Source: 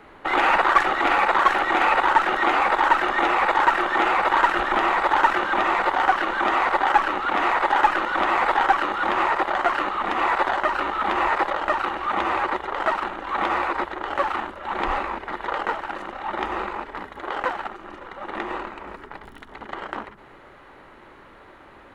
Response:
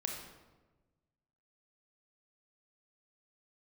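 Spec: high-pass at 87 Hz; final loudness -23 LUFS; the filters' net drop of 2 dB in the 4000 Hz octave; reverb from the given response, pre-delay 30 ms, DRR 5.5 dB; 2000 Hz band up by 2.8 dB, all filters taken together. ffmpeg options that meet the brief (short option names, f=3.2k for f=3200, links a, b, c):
-filter_complex "[0:a]highpass=87,equalizer=f=2k:t=o:g=4.5,equalizer=f=4k:t=o:g=-5.5,asplit=2[a][b];[1:a]atrim=start_sample=2205,adelay=30[c];[b][c]afir=irnorm=-1:irlink=0,volume=-7dB[d];[a][d]amix=inputs=2:normalize=0,volume=-3.5dB"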